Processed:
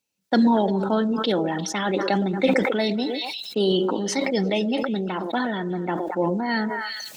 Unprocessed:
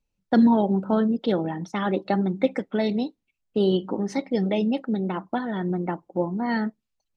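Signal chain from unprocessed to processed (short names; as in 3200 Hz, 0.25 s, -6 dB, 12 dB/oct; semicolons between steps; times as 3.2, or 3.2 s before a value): HPF 190 Hz 12 dB/oct; high shelf 2300 Hz +10.5 dB; notch 1200 Hz, Q 20; on a send: delay with a stepping band-pass 0.116 s, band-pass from 470 Hz, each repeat 1.4 oct, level -11 dB; on the sum: sustainer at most 26 dB/s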